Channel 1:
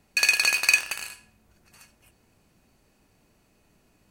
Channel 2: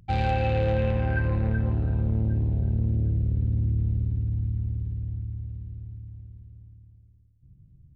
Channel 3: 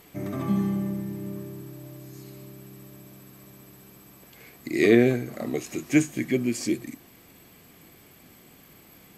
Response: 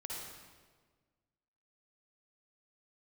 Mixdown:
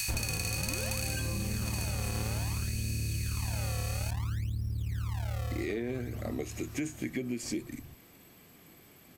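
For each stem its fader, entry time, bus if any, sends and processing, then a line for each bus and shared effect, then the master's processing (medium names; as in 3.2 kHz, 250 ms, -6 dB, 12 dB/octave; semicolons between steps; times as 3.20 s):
-2.5 dB, 0.00 s, no bus, no send, spectral levelling over time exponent 0.2; differentiator
+3.0 dB, 0.00 s, bus A, no send, decimation with a swept rate 40×, swing 160% 0.59 Hz
-4.0 dB, 0.85 s, bus A, no send, none
bus A: 0.0 dB, peak limiter -18 dBFS, peak gain reduction 8 dB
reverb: none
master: compression 10:1, threshold -30 dBFS, peak gain reduction 13.5 dB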